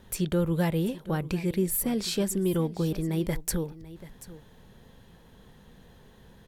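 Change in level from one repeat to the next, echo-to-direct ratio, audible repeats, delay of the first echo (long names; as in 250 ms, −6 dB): repeats not evenly spaced, −17.0 dB, 1, 735 ms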